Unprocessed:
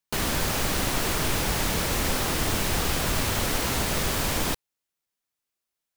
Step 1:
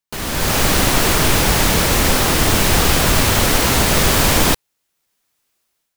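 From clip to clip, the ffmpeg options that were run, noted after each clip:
-af "dynaudnorm=f=170:g=5:m=16dB"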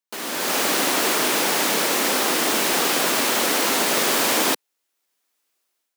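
-af "highpass=f=250:w=0.5412,highpass=f=250:w=1.3066,volume=-4dB"

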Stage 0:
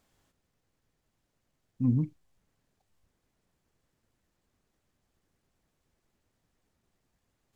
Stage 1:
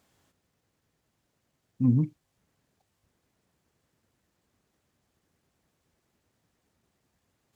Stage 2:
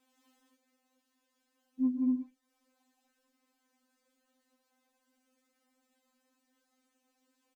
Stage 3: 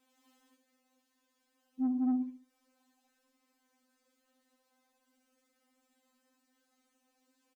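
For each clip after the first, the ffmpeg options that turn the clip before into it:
-af "highpass=66,volume=3.5dB"
-af "aecho=1:1:177.8|244.9:0.891|0.891,acompressor=threshold=-36dB:ratio=2,afftfilt=real='re*3.46*eq(mod(b,12),0)':imag='im*3.46*eq(mod(b,12),0)':win_size=2048:overlap=0.75,volume=-2.5dB"
-af "aecho=1:1:71|142|213|284:0.299|0.0985|0.0325|0.0107,asoftclip=type=tanh:threshold=-25dB"

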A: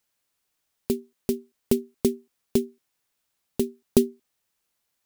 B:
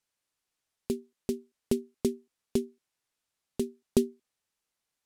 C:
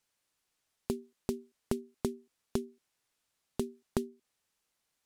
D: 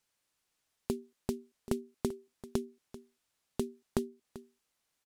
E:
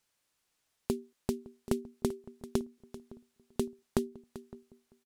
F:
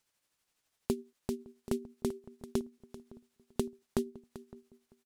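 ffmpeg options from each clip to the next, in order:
-af "lowpass=11k,volume=-5.5dB"
-af "acompressor=threshold=-33dB:ratio=6,volume=3.5dB"
-af "aecho=1:1:390:0.158"
-filter_complex "[0:a]asplit=2[a][b];[b]adelay=561,lowpass=f=850:p=1,volume=-19dB,asplit=2[c][d];[d]adelay=561,lowpass=f=850:p=1,volume=0.4,asplit=2[e][f];[f]adelay=561,lowpass=f=850:p=1,volume=0.4[g];[a][c][e][g]amix=inputs=4:normalize=0,volume=2dB"
-af "tremolo=f=12:d=0.44,volume=1dB"

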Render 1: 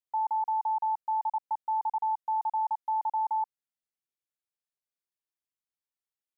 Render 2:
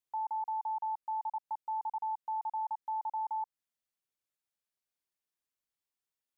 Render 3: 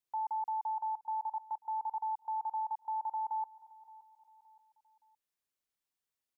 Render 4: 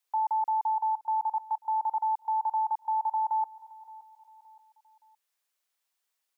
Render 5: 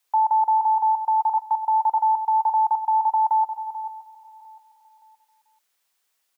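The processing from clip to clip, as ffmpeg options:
-af "alimiter=level_in=8dB:limit=-24dB:level=0:latency=1:release=170,volume=-8dB,volume=1dB"
-af "aecho=1:1:570|1140|1710:0.106|0.0445|0.0187"
-af "highpass=590,volume=8.5dB"
-af "aecho=1:1:123|438:0.106|0.266,volume=8.5dB"

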